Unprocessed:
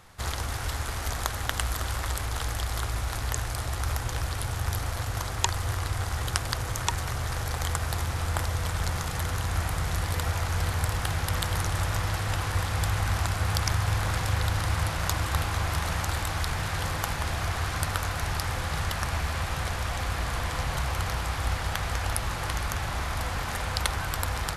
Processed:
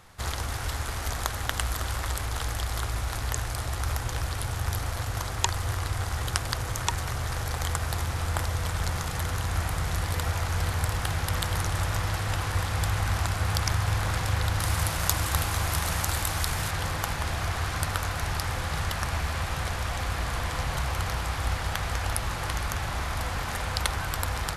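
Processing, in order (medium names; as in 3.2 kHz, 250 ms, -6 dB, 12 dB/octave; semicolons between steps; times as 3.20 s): 14.60–16.71 s: treble shelf 6.9 kHz +10.5 dB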